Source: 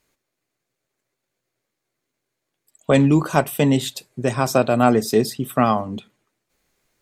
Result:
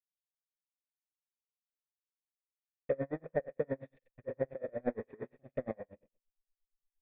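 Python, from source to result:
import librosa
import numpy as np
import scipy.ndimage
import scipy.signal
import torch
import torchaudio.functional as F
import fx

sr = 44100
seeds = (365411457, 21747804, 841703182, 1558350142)

p1 = fx.halfwave_hold(x, sr)
p2 = fx.env_phaser(p1, sr, low_hz=290.0, high_hz=2800.0, full_db=-15.0)
p3 = fx.backlash(p2, sr, play_db=-24.0)
p4 = fx.formant_cascade(p3, sr, vowel='e')
p5 = p4 + fx.room_flutter(p4, sr, wall_m=7.6, rt60_s=0.33, dry=0)
p6 = p5 * 10.0 ** (-35 * (0.5 - 0.5 * np.cos(2.0 * np.pi * 8.6 * np.arange(len(p5)) / sr)) / 20.0)
y = p6 * librosa.db_to_amplitude(-5.0)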